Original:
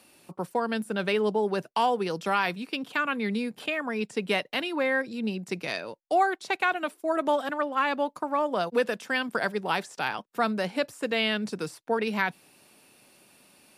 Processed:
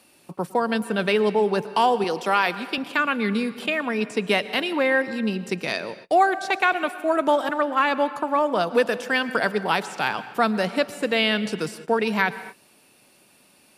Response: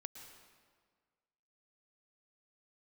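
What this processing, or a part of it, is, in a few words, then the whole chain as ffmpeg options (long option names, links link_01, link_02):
keyed gated reverb: -filter_complex "[0:a]asplit=3[link_01][link_02][link_03];[1:a]atrim=start_sample=2205[link_04];[link_02][link_04]afir=irnorm=-1:irlink=0[link_05];[link_03]apad=whole_len=607651[link_06];[link_05][link_06]sidechaingate=range=-32dB:threshold=-52dB:ratio=16:detection=peak,volume=1dB[link_07];[link_01][link_07]amix=inputs=2:normalize=0,asettb=1/sr,asplit=3[link_08][link_09][link_10];[link_08]atrim=end=2.044[link_11];[link_09]atrim=start=2.04:end=2.78,asetpts=PTS-STARTPTS,afade=type=in:duration=0.004:curve=qsin,afade=type=out:start_time=0.736:duration=0.004:curve=qsin,highpass=240[link_12];[link_10]atrim=start=2.776[link_13];[link_11][link_12]acrossfade=duration=0.004:curve1=hsin:curve2=qsin[link_14];[link_14][link_13]acrossfade=duration=0.004:curve1=qsin:curve2=hsin,volume=1dB"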